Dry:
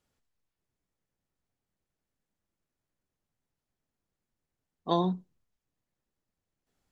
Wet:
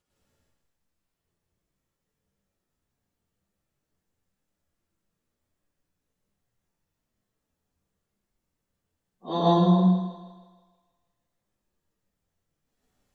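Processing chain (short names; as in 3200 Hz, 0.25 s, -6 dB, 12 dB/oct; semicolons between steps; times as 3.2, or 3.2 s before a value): plain phase-vocoder stretch 1.9×; thinning echo 0.159 s, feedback 51%, high-pass 250 Hz, level -11 dB; plate-style reverb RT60 0.83 s, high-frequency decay 0.8×, pre-delay 90 ms, DRR -6.5 dB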